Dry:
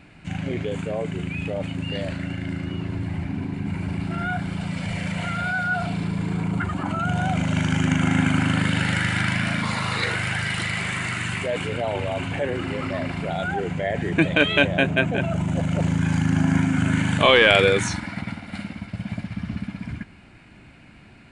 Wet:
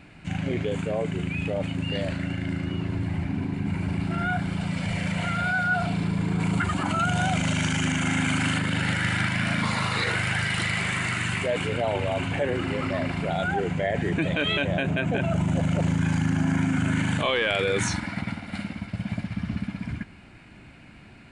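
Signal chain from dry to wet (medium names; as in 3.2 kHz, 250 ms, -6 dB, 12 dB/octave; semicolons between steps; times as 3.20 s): 6.40–8.59 s: treble shelf 2.2 kHz +10 dB; peak limiter -15 dBFS, peak gain reduction 10 dB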